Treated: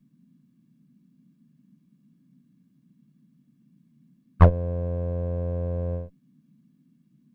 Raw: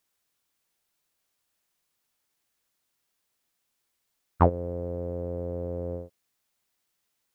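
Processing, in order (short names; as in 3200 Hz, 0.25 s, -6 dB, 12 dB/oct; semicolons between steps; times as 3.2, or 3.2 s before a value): minimum comb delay 1.8 ms; tone controls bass +10 dB, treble -8 dB; band noise 140–260 Hz -59 dBFS; gain -1.5 dB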